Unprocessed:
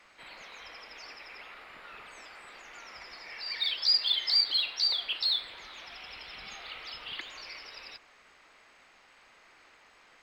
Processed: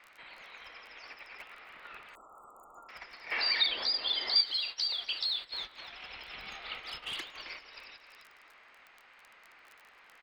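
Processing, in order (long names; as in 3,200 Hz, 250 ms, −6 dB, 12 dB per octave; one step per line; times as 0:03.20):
low-pass that shuts in the quiet parts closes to 2,600 Hz, open at −28.5 dBFS
surface crackle 21 per second −44 dBFS
repeating echo 267 ms, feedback 23%, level −12.5 dB
0:06.79–0:07.35: hard clipping −37 dBFS, distortion −32 dB
downward compressor 2.5 to 1, threshold −46 dBFS, peak gain reduction 16.5 dB
0:03.32–0:04.42: gain on a spectral selection 210–4,900 Hz +7 dB
noise gate −47 dBFS, range −14 dB
0:02.15–0:02.89: linear-phase brick-wall band-stop 1,400–6,800 Hz
0:03.66–0:04.36: tilt shelving filter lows +8 dB, about 1,400 Hz
one half of a high-frequency compander encoder only
level +8.5 dB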